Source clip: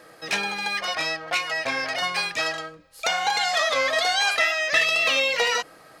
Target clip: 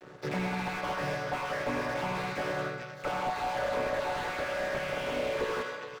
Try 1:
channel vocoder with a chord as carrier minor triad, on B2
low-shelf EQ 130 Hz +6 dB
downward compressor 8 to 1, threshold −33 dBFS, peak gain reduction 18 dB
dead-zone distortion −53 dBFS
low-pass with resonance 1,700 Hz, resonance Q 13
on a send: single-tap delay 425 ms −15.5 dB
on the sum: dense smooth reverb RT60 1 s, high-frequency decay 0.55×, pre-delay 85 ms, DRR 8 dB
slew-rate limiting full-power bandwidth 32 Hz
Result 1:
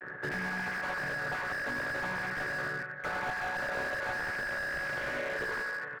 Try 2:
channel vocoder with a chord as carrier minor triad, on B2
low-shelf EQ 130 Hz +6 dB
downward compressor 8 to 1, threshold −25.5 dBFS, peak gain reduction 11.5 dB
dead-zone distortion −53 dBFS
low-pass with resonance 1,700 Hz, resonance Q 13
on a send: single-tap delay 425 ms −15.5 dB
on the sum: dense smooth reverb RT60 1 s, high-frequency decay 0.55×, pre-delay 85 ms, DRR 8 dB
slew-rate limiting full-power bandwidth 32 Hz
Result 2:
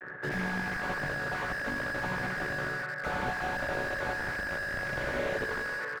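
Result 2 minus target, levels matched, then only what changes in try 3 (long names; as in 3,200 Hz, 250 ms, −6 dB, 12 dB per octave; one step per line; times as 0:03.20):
2,000 Hz band +5.0 dB
remove: low-pass with resonance 1,700 Hz, resonance Q 13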